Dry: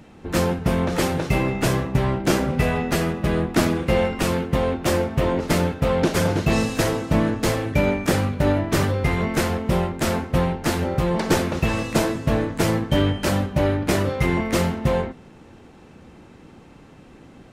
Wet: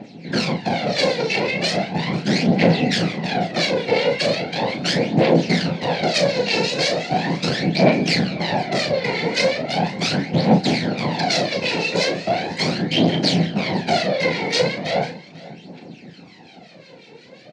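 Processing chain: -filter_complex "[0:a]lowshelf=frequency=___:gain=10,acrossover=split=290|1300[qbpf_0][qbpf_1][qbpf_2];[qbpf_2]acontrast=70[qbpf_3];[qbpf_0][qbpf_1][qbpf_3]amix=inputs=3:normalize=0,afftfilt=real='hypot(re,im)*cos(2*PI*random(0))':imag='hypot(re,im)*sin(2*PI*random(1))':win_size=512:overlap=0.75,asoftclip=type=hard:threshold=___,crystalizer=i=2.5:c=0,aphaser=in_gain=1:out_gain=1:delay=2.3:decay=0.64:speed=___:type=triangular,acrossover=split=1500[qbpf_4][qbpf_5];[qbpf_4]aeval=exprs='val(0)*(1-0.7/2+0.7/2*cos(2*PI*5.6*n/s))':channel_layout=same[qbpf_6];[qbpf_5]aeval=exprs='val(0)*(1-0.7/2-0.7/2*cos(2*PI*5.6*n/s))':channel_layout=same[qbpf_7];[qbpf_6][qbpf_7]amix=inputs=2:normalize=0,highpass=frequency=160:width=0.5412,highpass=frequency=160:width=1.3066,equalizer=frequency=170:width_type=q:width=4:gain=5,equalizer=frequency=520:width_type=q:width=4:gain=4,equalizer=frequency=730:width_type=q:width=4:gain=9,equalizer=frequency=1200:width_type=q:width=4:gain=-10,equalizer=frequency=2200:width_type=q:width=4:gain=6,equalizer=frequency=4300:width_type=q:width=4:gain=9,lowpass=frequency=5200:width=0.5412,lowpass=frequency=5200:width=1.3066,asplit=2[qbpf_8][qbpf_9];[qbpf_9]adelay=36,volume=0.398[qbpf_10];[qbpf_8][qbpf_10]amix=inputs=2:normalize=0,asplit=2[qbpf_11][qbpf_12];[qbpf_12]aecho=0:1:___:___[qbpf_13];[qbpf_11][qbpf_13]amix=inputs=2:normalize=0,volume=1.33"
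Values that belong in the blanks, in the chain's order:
460, 0.106, 0.38, 494, 0.106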